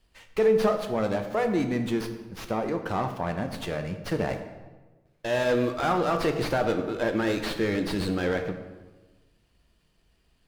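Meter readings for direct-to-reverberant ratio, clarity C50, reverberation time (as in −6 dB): 6.0 dB, 8.5 dB, 1.3 s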